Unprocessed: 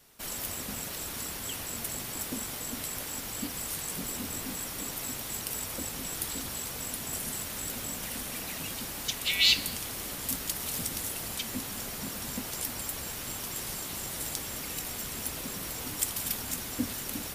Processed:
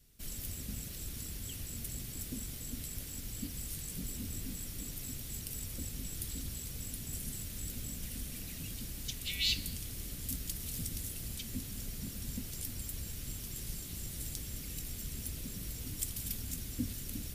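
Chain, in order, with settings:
guitar amp tone stack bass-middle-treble 10-0-1
level +13 dB

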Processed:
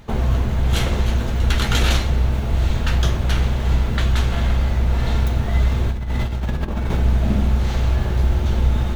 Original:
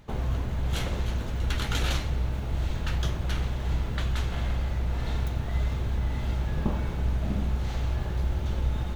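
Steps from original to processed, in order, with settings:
0:05.91–0:06.99: compressor whose output falls as the input rises −30 dBFS, ratio −0.5
convolution reverb RT60 0.35 s, pre-delay 4 ms, DRR 10 dB
level +9 dB

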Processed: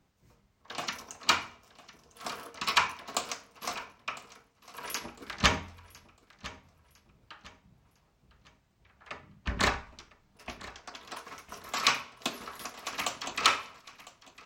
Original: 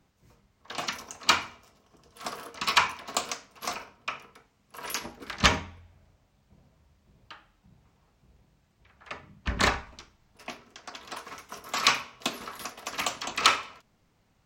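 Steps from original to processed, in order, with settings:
repeating echo 1,004 ms, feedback 36%, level −18.5 dB
level −3 dB

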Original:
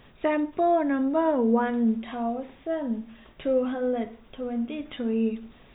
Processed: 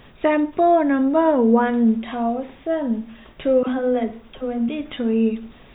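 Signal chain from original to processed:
0:03.63–0:04.69: all-pass dispersion lows, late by 47 ms, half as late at 450 Hz
level +6.5 dB

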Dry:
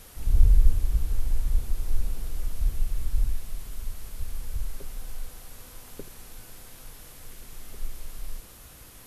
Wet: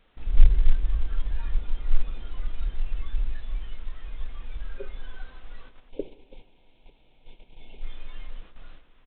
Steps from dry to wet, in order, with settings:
multi-tap delay 134/332/897 ms −15.5/−9.5/−14.5 dB
in parallel at −11 dB: hard clipping −17.5 dBFS, distortion −9 dB
on the sum: noise gate −37 dBFS, range −10 dB
time-frequency box erased 0:05.89–0:07.83, 1,000–2,100 Hz
bit reduction 11 bits
noise reduction from a noise print of the clip's start 14 dB
parametric band 92 Hz −14 dB 0.78 octaves
on a send at −18.5 dB: convolution reverb RT60 1.2 s, pre-delay 3 ms
on the sum: boost into a limiter +11.5 dB
level −1.5 dB
mu-law 64 kbit/s 8,000 Hz

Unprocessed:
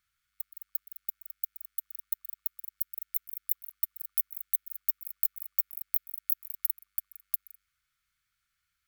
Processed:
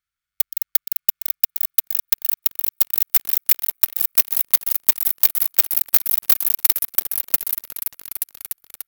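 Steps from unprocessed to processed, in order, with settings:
echo whose low-pass opens from repeat to repeat 293 ms, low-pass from 750 Hz, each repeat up 2 octaves, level 0 dB
leveller curve on the samples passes 5
level +3 dB

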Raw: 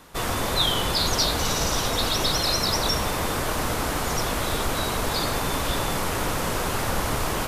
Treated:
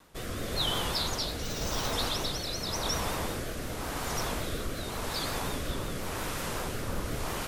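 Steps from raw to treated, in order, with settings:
rotating-speaker cabinet horn 0.9 Hz
pitch vibrato 5.5 Hz 78 cents
0:01.43–0:01.93: bad sample-rate conversion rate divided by 2×, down filtered, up hold
level −6 dB

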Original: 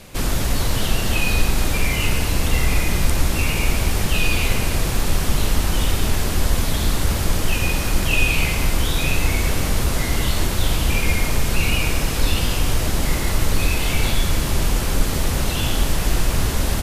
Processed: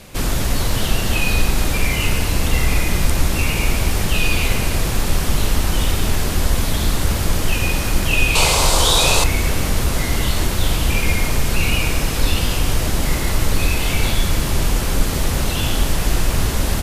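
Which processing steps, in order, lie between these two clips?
0:08.35–0:09.24: octave-band graphic EQ 250/500/1,000/2,000/4,000/8,000 Hz −5/+8/+11/−5/+10/+10 dB
level +1.5 dB
Opus 128 kbit/s 48,000 Hz

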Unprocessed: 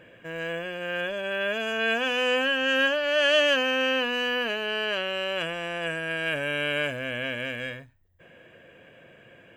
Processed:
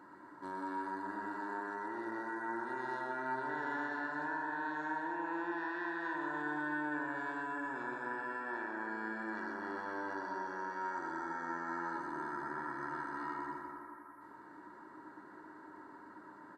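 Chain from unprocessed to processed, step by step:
high-pass filter 530 Hz 12 dB per octave
downward compressor 6 to 1, threshold −37 dBFS, peak gain reduction 18 dB
repeating echo 71 ms, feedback 48%, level −6.5 dB
spring reverb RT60 2 s, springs 50/58 ms, chirp 70 ms, DRR 2 dB
wrong playback speed 78 rpm record played at 45 rpm
level −2.5 dB

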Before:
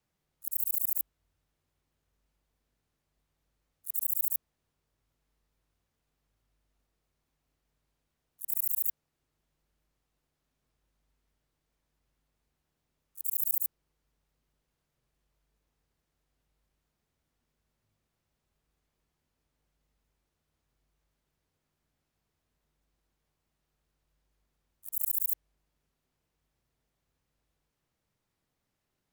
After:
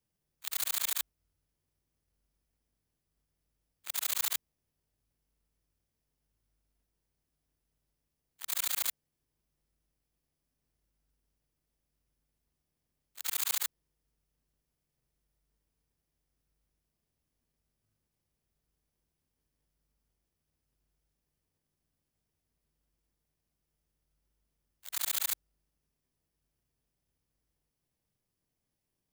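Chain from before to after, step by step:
samples in bit-reversed order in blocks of 32 samples
level −2.5 dB

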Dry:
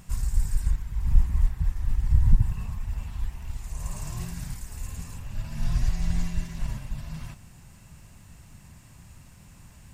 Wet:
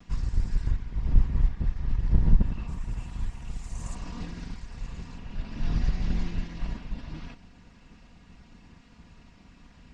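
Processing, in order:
lower of the sound and its delayed copy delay 4.2 ms
low-pass filter 5,200 Hz 24 dB per octave, from 0:02.68 8,300 Hz, from 0:03.95 5,000 Hz

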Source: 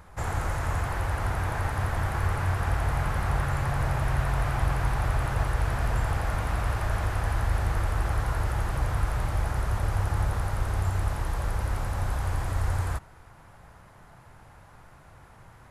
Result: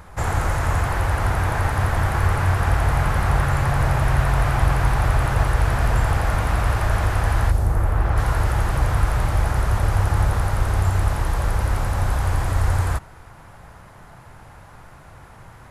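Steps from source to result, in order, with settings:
0:07.50–0:08.16: parametric band 1,700 Hz → 11,000 Hz −12.5 dB 2.5 octaves
level +7.5 dB

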